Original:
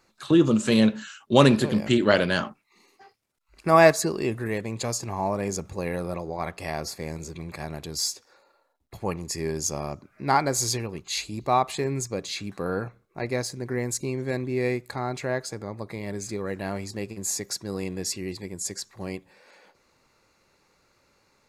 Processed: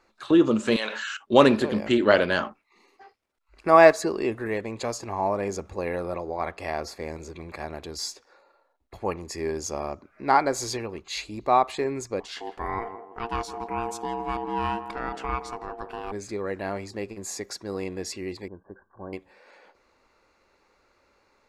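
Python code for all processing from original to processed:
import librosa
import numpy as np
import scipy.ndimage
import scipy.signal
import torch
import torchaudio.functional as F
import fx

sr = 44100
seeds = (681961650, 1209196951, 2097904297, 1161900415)

y = fx.chain(x, sr, fx.highpass(hz=1000.0, slope=12),
    fx.env_flatten(amount_pct=70), at=(0.76, 1.17))
y = fx.chain(y, sr, fx.ring_mod(carrier_hz=580.0),
    fx.echo_banded(ms=166, feedback_pct=51, hz=470.0, wet_db=-7.5), at=(12.2, 16.12))
y = fx.chain(y, sr, fx.cheby_ripple(hz=1600.0, ripple_db=6),
    fx.comb(ms=1.2, depth=0.45), at=(18.48, 19.13))
y = fx.lowpass(y, sr, hz=2200.0, slope=6)
y = fx.peak_eq(y, sr, hz=140.0, db=-13.5, octaves=1.1)
y = y * 10.0 ** (3.0 / 20.0)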